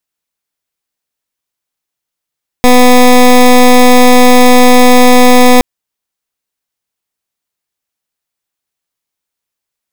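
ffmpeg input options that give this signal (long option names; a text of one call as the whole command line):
ffmpeg -f lavfi -i "aevalsrc='0.708*(2*lt(mod(249*t,1),0.17)-1)':duration=2.97:sample_rate=44100" out.wav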